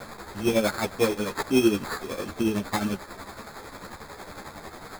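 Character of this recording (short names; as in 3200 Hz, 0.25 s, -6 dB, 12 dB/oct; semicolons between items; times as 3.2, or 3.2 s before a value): a quantiser's noise floor 6-bit, dither triangular; tremolo triangle 11 Hz, depth 70%; aliases and images of a low sample rate 2900 Hz, jitter 0%; a shimmering, thickened sound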